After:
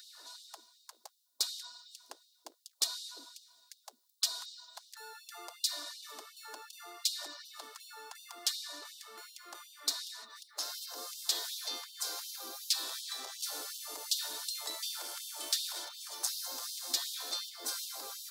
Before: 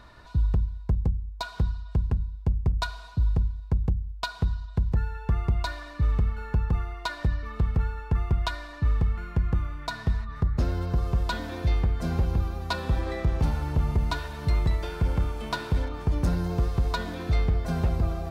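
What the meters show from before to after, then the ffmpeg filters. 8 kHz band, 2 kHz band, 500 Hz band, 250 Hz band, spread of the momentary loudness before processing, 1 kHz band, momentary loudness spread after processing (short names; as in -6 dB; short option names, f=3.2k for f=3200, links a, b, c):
n/a, -12.0 dB, -17.0 dB, -28.0 dB, 4 LU, -13.0 dB, 18 LU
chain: -af "afftfilt=real='re*lt(hypot(re,im),0.0631)':imag='im*lt(hypot(re,im),0.0631)':win_size=1024:overlap=0.75,aexciter=amount=5.9:drive=8.1:freq=3.6k,afftfilt=real='re*gte(b*sr/1024,230*pow(2800/230,0.5+0.5*sin(2*PI*2.7*pts/sr)))':imag='im*gte(b*sr/1024,230*pow(2800/230,0.5+0.5*sin(2*PI*2.7*pts/sr)))':win_size=1024:overlap=0.75,volume=-6dB"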